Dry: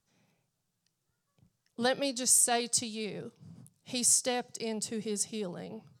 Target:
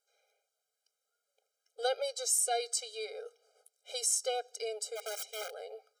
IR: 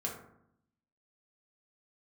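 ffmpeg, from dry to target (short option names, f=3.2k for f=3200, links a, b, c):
-filter_complex "[0:a]asplit=2[a][b];[b]acompressor=threshold=-34dB:ratio=16,volume=-2dB[c];[a][c]amix=inputs=2:normalize=0,asplit=3[d][e][f];[d]afade=t=out:st=4.95:d=0.02[g];[e]aeval=exprs='(mod(21.1*val(0)+1,2)-1)/21.1':c=same,afade=t=in:st=4.95:d=0.02,afade=t=out:st=5.53:d=0.02[h];[f]afade=t=in:st=5.53:d=0.02[i];[g][h][i]amix=inputs=3:normalize=0,afftfilt=real='re*eq(mod(floor(b*sr/1024/410),2),1)':imag='im*eq(mod(floor(b*sr/1024/410),2),1)':win_size=1024:overlap=0.75,volume=-3.5dB"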